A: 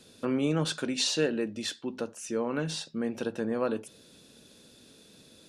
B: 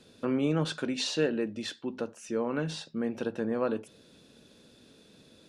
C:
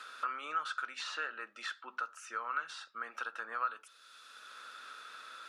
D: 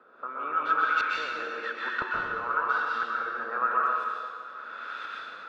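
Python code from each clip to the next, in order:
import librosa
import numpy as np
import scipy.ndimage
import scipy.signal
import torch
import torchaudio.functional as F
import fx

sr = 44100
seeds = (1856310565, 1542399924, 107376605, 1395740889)

y1 = fx.high_shelf(x, sr, hz=5500.0, db=-11.0)
y2 = fx.highpass_res(y1, sr, hz=1300.0, q=11.0)
y2 = fx.band_squash(y2, sr, depth_pct=70)
y2 = y2 * 10.0 ** (-7.0 / 20.0)
y3 = fx.filter_lfo_lowpass(y2, sr, shape='saw_up', hz=0.99, low_hz=450.0, high_hz=3600.0, q=0.82)
y3 = fx.rev_plate(y3, sr, seeds[0], rt60_s=2.1, hf_ratio=0.9, predelay_ms=115, drr_db=-5.0)
y3 = y3 * 10.0 ** (7.5 / 20.0)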